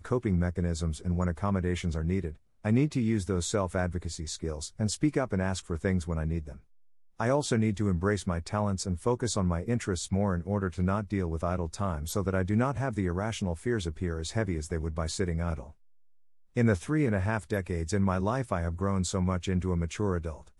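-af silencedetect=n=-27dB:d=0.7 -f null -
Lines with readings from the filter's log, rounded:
silence_start: 6.39
silence_end: 7.20 | silence_duration: 0.82
silence_start: 15.60
silence_end: 16.57 | silence_duration: 0.97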